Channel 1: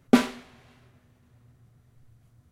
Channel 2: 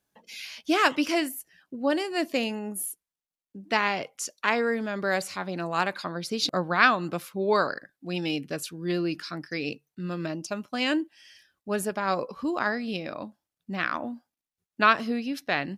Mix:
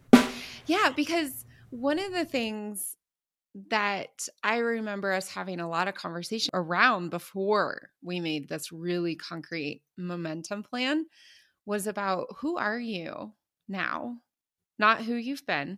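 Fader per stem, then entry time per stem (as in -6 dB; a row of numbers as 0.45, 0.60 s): +2.5, -2.0 dB; 0.00, 0.00 s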